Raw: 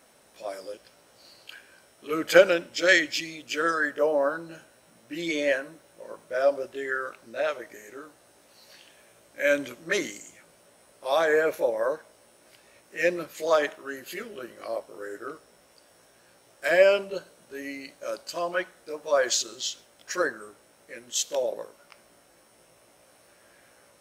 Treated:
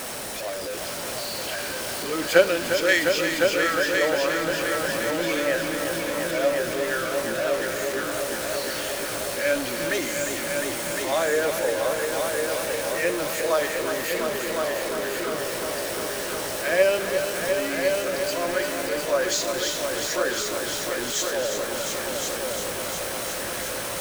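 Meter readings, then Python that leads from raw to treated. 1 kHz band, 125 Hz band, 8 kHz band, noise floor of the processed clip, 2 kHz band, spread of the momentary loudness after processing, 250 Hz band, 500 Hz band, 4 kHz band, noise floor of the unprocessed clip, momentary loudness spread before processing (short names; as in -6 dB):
+4.5 dB, +10.5 dB, +8.5 dB, -31 dBFS, +3.0 dB, 7 LU, +5.5 dB, +3.0 dB, +6.5 dB, -59 dBFS, 22 LU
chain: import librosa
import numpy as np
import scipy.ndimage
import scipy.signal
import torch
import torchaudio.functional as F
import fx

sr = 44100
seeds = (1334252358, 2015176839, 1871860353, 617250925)

y = x + 0.5 * 10.0 ** (-18.5 / 20.0) * np.sign(x)
y = fx.power_curve(y, sr, exponent=1.4)
y = fx.echo_heads(y, sr, ms=353, heads='all three', feedback_pct=63, wet_db=-8.5)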